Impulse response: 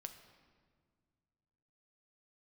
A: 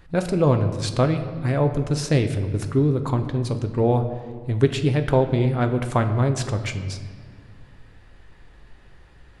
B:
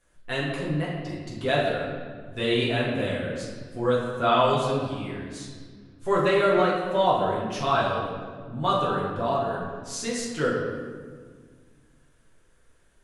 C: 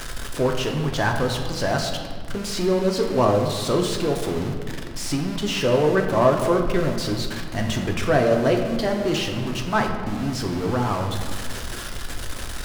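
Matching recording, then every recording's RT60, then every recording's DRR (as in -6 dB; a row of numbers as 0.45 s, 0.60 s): A; 1.9 s, 1.7 s, 1.8 s; 6.5 dB, -6.5 dB, 2.0 dB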